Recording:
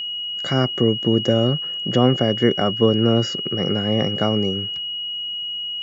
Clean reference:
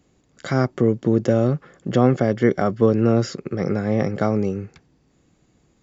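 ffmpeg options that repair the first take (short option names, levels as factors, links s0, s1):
-af "bandreject=f=2900:w=30"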